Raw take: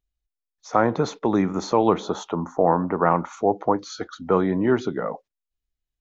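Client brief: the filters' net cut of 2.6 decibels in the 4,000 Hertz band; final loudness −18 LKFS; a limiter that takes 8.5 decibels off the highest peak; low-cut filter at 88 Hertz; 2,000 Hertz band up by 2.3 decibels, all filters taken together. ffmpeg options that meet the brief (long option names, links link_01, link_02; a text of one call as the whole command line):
ffmpeg -i in.wav -af "highpass=88,equalizer=frequency=2000:width_type=o:gain=4,equalizer=frequency=4000:width_type=o:gain=-4,volume=7.5dB,alimiter=limit=-4dB:level=0:latency=1" out.wav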